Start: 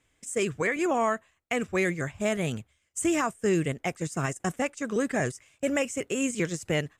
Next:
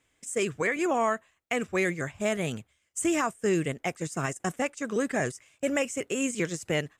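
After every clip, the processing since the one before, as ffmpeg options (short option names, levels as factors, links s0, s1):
-af "lowshelf=f=120:g=-7"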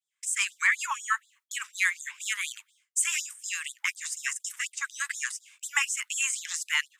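-af "asubboost=boost=2.5:cutoff=140,agate=range=0.0224:threshold=0.00112:ratio=3:detection=peak,afftfilt=real='re*gte(b*sr/1024,830*pow(3400/830,0.5+0.5*sin(2*PI*4.1*pts/sr)))':imag='im*gte(b*sr/1024,830*pow(3400/830,0.5+0.5*sin(2*PI*4.1*pts/sr)))':win_size=1024:overlap=0.75,volume=2.24"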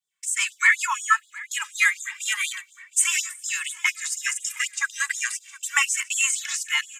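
-filter_complex "[0:a]dynaudnorm=f=100:g=9:m=1.5,aecho=1:1:715|1430|2145|2860:0.119|0.0594|0.0297|0.0149,asplit=2[s0][s1];[s1]adelay=2.2,afreqshift=-0.35[s2];[s0][s2]amix=inputs=2:normalize=1,volume=1.88"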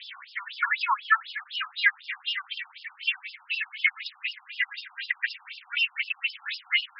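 -af "aeval=exprs='val(0)+0.5*0.0355*sgn(val(0))':c=same,afftfilt=real='re*between(b*sr/1024,990*pow(3900/990,0.5+0.5*sin(2*PI*4*pts/sr))/1.41,990*pow(3900/990,0.5+0.5*sin(2*PI*4*pts/sr))*1.41)':imag='im*between(b*sr/1024,990*pow(3900/990,0.5+0.5*sin(2*PI*4*pts/sr))/1.41,990*pow(3900/990,0.5+0.5*sin(2*PI*4*pts/sr))*1.41)':win_size=1024:overlap=0.75"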